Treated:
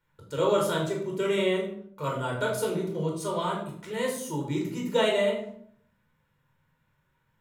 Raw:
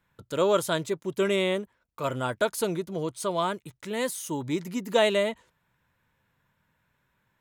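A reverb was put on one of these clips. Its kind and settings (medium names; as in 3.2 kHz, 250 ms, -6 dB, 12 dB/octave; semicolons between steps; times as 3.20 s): simulated room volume 1000 m³, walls furnished, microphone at 4.6 m; trim -7 dB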